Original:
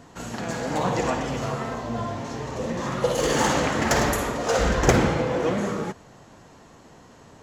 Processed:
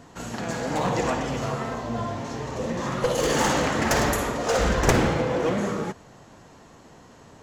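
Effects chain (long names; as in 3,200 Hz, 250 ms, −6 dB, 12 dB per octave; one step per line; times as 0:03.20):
wavefolder on the positive side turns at −16 dBFS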